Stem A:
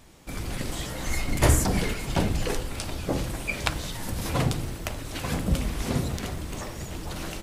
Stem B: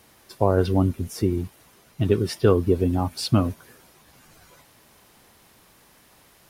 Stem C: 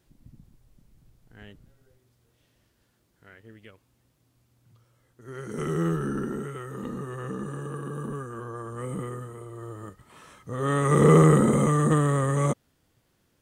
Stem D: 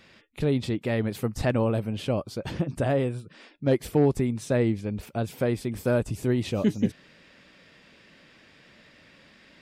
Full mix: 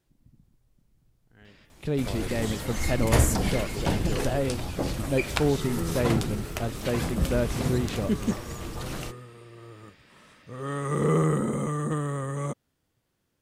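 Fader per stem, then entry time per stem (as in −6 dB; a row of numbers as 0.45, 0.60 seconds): −1.5, −18.0, −7.0, −3.0 decibels; 1.70, 1.65, 0.00, 1.45 seconds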